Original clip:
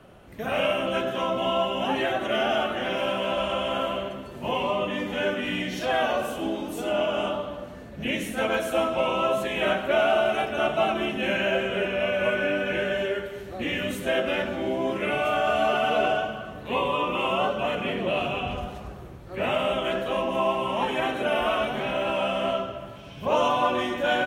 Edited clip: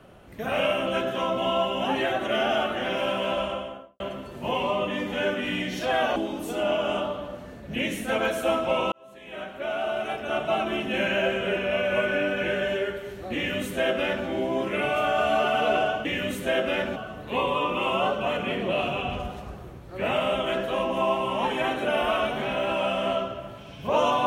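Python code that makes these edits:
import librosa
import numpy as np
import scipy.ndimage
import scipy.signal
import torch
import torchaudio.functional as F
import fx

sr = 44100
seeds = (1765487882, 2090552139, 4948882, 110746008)

y = fx.studio_fade_out(x, sr, start_s=3.29, length_s=0.71)
y = fx.edit(y, sr, fx.cut(start_s=6.16, length_s=0.29),
    fx.fade_in_span(start_s=9.21, length_s=2.03),
    fx.duplicate(start_s=13.65, length_s=0.91, to_s=16.34), tone=tone)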